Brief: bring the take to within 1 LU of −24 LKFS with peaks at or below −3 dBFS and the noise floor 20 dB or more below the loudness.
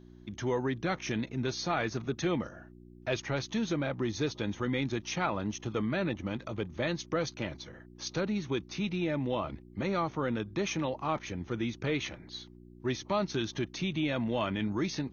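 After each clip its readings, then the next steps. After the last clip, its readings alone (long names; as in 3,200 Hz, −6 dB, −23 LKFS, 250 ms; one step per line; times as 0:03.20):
mains hum 60 Hz; hum harmonics up to 360 Hz; level of the hum −52 dBFS; integrated loudness −33.5 LKFS; sample peak −16.5 dBFS; target loudness −24.0 LKFS
→ hum removal 60 Hz, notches 6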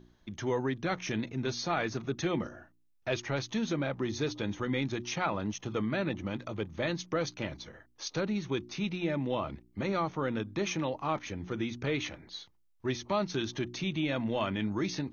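mains hum none found; integrated loudness −33.5 LKFS; sample peak −17.5 dBFS; target loudness −24.0 LKFS
→ level +9.5 dB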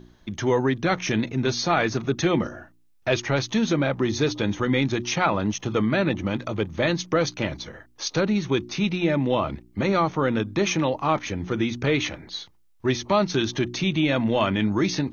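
integrated loudness −24.0 LKFS; sample peak −8.0 dBFS; background noise floor −57 dBFS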